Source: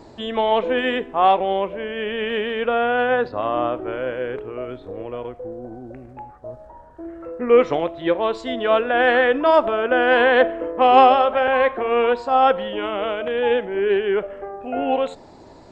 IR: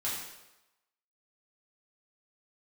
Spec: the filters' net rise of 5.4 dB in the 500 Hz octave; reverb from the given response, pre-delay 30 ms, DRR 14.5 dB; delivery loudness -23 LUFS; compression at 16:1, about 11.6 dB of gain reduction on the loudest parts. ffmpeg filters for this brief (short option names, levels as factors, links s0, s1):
-filter_complex "[0:a]equalizer=f=500:t=o:g=6,acompressor=threshold=0.178:ratio=16,asplit=2[s0][s1];[1:a]atrim=start_sample=2205,adelay=30[s2];[s1][s2]afir=irnorm=-1:irlink=0,volume=0.106[s3];[s0][s3]amix=inputs=2:normalize=0,volume=0.794"